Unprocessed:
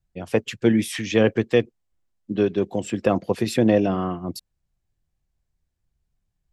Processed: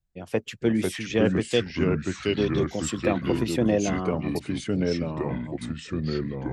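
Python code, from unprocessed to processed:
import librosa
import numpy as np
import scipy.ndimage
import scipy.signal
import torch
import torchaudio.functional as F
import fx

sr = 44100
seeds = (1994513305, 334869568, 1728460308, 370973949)

y = fx.high_shelf_res(x, sr, hz=2800.0, db=10.0, q=1.5, at=(1.45, 3.02))
y = fx.echo_pitch(y, sr, ms=432, semitones=-3, count=3, db_per_echo=-3.0)
y = y * librosa.db_to_amplitude(-5.0)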